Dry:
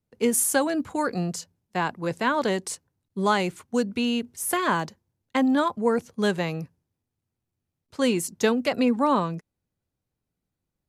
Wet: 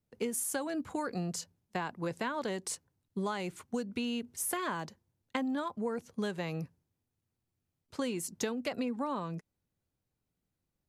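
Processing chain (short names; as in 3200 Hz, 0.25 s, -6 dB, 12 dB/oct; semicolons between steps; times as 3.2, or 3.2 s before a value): compressor, threshold -30 dBFS, peak gain reduction 13.5 dB; gain -2 dB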